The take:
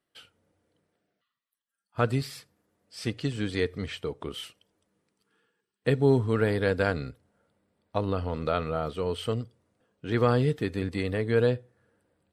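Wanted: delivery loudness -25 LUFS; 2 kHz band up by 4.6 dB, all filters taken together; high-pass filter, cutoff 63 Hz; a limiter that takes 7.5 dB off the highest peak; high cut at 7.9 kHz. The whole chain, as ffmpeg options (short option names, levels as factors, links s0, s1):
-af "highpass=63,lowpass=7900,equalizer=f=2000:t=o:g=6,volume=1.68,alimiter=limit=0.316:level=0:latency=1"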